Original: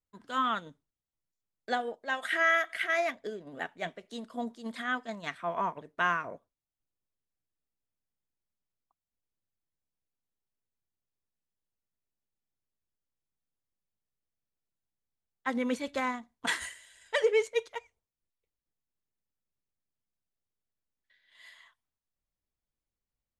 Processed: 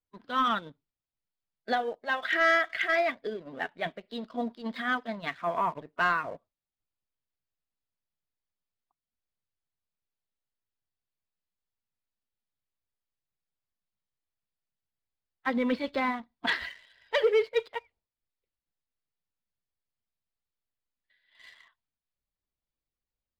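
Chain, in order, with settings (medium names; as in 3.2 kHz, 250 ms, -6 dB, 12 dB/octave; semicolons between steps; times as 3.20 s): coarse spectral quantiser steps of 15 dB; resampled via 11.025 kHz; waveshaping leveller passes 1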